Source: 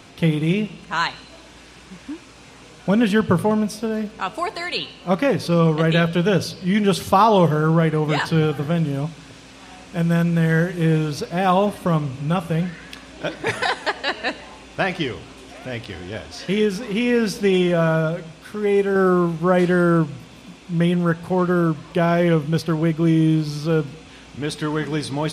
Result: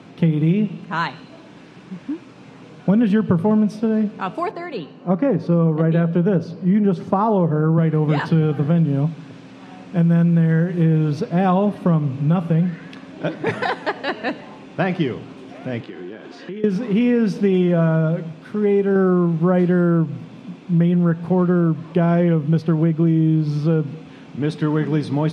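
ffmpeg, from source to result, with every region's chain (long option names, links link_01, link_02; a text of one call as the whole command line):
ffmpeg -i in.wav -filter_complex "[0:a]asettb=1/sr,asplit=3[link_01][link_02][link_03];[link_01]atrim=end=4.514[link_04];[link_02]atrim=start=4.51:end=7.78,asetpts=PTS-STARTPTS,afade=type=in:duration=0.004:curve=qsin,afade=type=out:start_time=3.266:duration=0.004:curve=qsin,highpass=150,lowpass=5700,equalizer=frequency=3300:width_type=o:width=1.6:gain=-10.5[link_05];[link_03]atrim=start=7.776[link_06];[link_04][link_05]acrossfade=duration=0.004:curve1=hsin:curve2=qsin[link_07];[link_07][link_06]acrossfade=duration=0.004:curve1=qsin:curve2=hsin,asettb=1/sr,asplit=3[link_08][link_09][link_10];[link_08]atrim=end=15.804[link_11];[link_09]atrim=start=15.8:end=16.64,asetpts=PTS-STARTPTS,afade=type=in:duration=0.004:curve=qsin,afade=type=out:start_time=0.836:duration=0.004:curve=qsin,highpass=240,equalizer=frequency=350:width_type=q:width=4:gain=7,equalizer=frequency=610:width_type=q:width=4:gain=-5,equalizer=frequency=1600:width_type=q:width=4:gain=3,equalizer=frequency=5500:width_type=q:width=4:gain=-6,lowpass=frequency=8100:width=0.5412,lowpass=frequency=8100:width=1.3066,acompressor=threshold=-33dB:ratio=6:attack=3.2:release=140:knee=1:detection=peak[link_12];[link_10]atrim=start=16.636[link_13];[link_11][link_12]acrossfade=duration=0.004:curve1=hsin:curve2=qsin[link_14];[link_14][link_13]acrossfade=duration=0.004:curve1=qsin:curve2=hsin,highpass=frequency=150:width=0.5412,highpass=frequency=150:width=1.3066,aemphasis=mode=reproduction:type=riaa,acompressor=threshold=-13dB:ratio=6" out.wav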